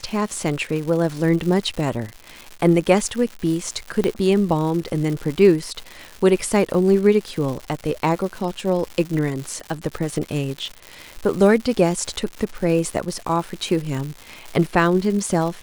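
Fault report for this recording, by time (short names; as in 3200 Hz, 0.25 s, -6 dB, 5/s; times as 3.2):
crackle 220/s -27 dBFS
4.04 pop -9 dBFS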